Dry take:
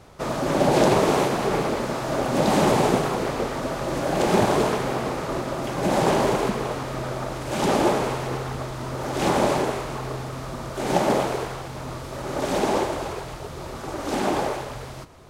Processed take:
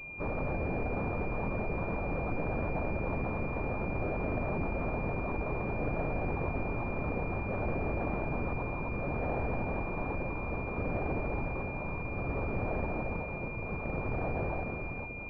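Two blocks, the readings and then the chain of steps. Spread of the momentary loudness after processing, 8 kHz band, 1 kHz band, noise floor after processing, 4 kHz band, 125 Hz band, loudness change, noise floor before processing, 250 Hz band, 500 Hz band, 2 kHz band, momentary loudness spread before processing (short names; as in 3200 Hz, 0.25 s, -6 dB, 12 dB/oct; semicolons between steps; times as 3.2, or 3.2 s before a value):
3 LU, under -40 dB, -13.5 dB, -38 dBFS, under -30 dB, -5.5 dB, -11.0 dB, -36 dBFS, -11.0 dB, -12.5 dB, -6.5 dB, 13 LU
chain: notch 610 Hz, Q 12; compressor, threshold -22 dBFS, peak gain reduction 8 dB; frequency shift -150 Hz; hard clip -27.5 dBFS, distortion -9 dB; on a send: diffused feedback echo 1.521 s, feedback 67%, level -11.5 dB; on the sum: LPC vocoder at 8 kHz whisper; pulse-width modulation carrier 2400 Hz; gain -2.5 dB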